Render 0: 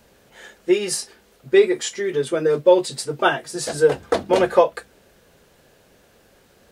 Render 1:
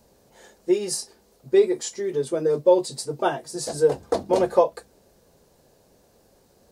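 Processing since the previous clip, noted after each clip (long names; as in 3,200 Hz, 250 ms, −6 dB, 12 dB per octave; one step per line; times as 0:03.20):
flat-topped bell 2,100 Hz −9 dB
level −3 dB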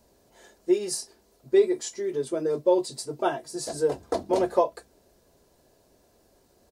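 comb filter 3 ms, depth 31%
level −3.5 dB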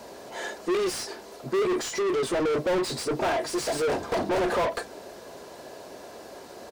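mid-hump overdrive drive 40 dB, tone 2,200 Hz, clips at −9.5 dBFS
level −8.5 dB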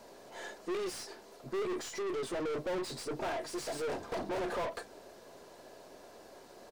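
gain on one half-wave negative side −3 dB
level −9 dB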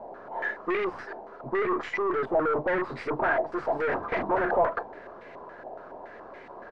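low-pass on a step sequencer 7.1 Hz 780–2,100 Hz
level +6.5 dB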